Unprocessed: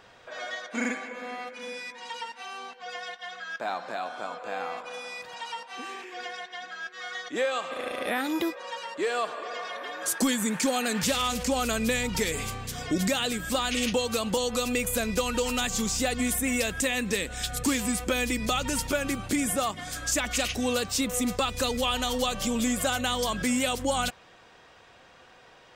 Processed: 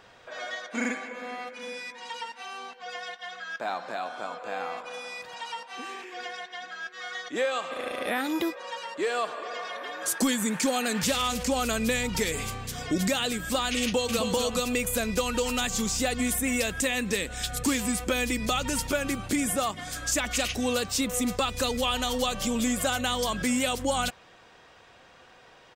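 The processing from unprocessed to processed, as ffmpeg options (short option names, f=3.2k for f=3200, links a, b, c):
-filter_complex "[0:a]asplit=2[a][b];[b]afade=t=in:st=13.82:d=0.01,afade=t=out:st=14.33:d=0.01,aecho=0:1:260|520|780:0.501187|0.0751781|0.0112767[c];[a][c]amix=inputs=2:normalize=0"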